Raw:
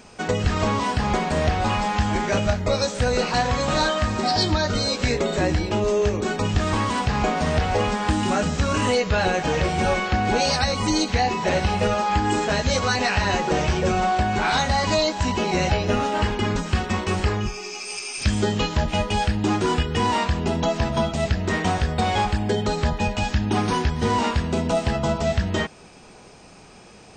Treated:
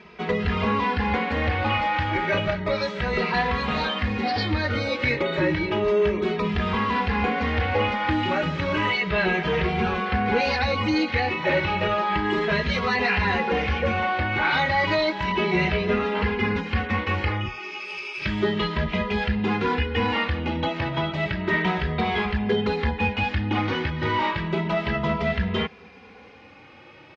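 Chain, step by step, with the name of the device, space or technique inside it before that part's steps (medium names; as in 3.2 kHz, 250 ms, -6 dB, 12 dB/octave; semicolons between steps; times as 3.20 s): barber-pole flanger into a guitar amplifier (endless flanger 2.6 ms +0.32 Hz; saturation -14.5 dBFS, distortion -22 dB; cabinet simulation 78–3600 Hz, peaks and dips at 120 Hz -8 dB, 260 Hz -4 dB, 690 Hz -7 dB, 2.1 kHz +6 dB); trim +4 dB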